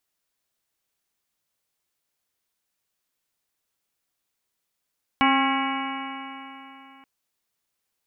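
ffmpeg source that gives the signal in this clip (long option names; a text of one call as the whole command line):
ffmpeg -f lavfi -i "aevalsrc='0.0944*pow(10,-3*t/3.28)*sin(2*PI*267.24*t)+0.0133*pow(10,-3*t/3.28)*sin(2*PI*535.92*t)+0.0841*pow(10,-3*t/3.28)*sin(2*PI*807.46*t)+0.0891*pow(10,-3*t/3.28)*sin(2*PI*1083.27*t)+0.0376*pow(10,-3*t/3.28)*sin(2*PI*1364.71*t)+0.0316*pow(10,-3*t/3.28)*sin(2*PI*1653.09*t)+0.0299*pow(10,-3*t/3.28)*sin(2*PI*1949.68*t)+0.0631*pow(10,-3*t/3.28)*sin(2*PI*2255.68*t)+0.0168*pow(10,-3*t/3.28)*sin(2*PI*2572.22*t)+0.0422*pow(10,-3*t/3.28)*sin(2*PI*2900.36*t)':duration=1.83:sample_rate=44100" out.wav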